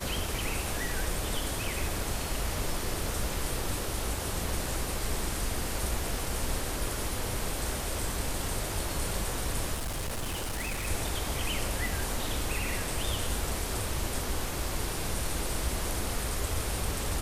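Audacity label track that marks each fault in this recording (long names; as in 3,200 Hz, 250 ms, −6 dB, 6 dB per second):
9.740000	10.880000	clipping −30 dBFS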